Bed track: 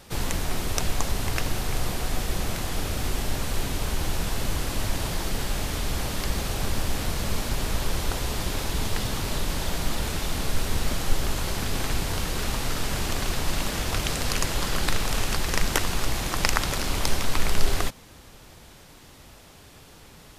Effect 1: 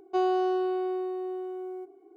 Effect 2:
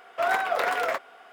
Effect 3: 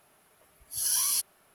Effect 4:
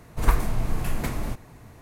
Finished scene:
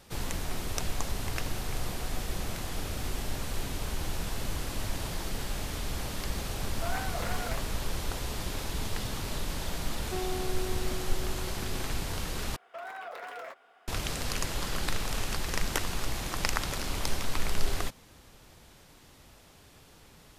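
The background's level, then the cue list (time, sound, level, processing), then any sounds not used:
bed track -6.5 dB
6.63 s: add 2 -12.5 dB
9.98 s: add 1 -14 dB + bass shelf 450 Hz +6.5 dB
12.56 s: replace with 2 -10.5 dB + peak limiter -22 dBFS
not used: 3, 4

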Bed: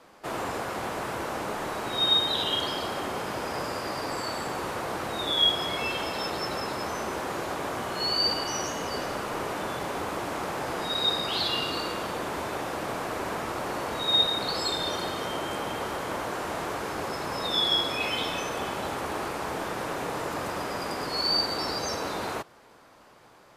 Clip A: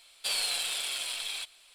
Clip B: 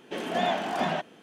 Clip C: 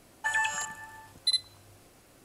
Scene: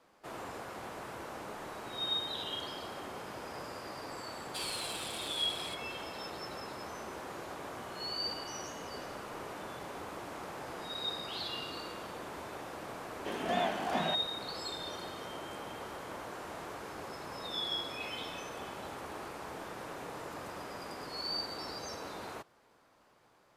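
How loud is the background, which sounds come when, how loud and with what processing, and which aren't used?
bed -11.5 dB
4.30 s: add A -9 dB
13.14 s: add B -5.5 dB
not used: C

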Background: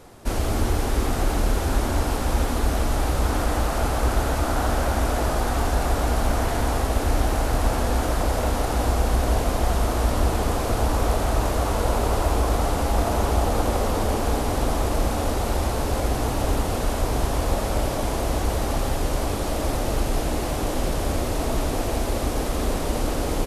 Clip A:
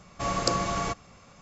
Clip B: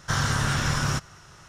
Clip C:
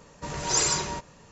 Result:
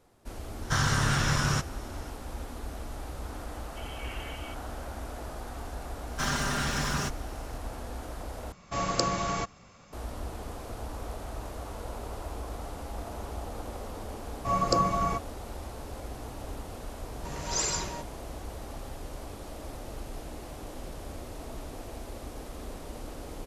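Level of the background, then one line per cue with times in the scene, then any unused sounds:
background -16.5 dB
0.62 s: add B -1.5 dB
3.54 s: add C -14.5 dB + frequency inversion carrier 3.2 kHz
6.10 s: add B -3 dB + comb filter that takes the minimum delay 5 ms
8.52 s: replace with A -1.5 dB
14.25 s: add A -3.5 dB + spectral contrast expander 1.5:1
17.02 s: add C -6 dB

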